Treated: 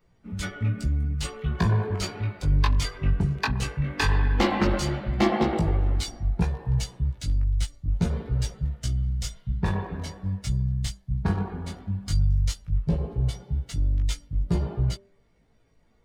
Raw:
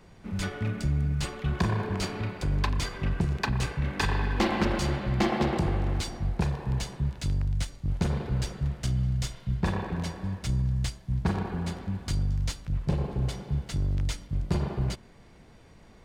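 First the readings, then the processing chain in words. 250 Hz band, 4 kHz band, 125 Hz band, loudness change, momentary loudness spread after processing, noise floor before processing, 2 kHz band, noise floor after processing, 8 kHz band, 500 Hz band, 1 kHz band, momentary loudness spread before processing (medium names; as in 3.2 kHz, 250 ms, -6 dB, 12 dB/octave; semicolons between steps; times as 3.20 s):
+1.5 dB, +2.0 dB, +2.5 dB, +2.5 dB, 8 LU, -53 dBFS, +1.5 dB, -62 dBFS, +2.5 dB, +2.5 dB, +2.0 dB, 6 LU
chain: expander on every frequency bin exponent 1.5; chorus 0.14 Hz, delay 17 ms, depth 3.7 ms; de-hum 197.2 Hz, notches 4; trim +8.5 dB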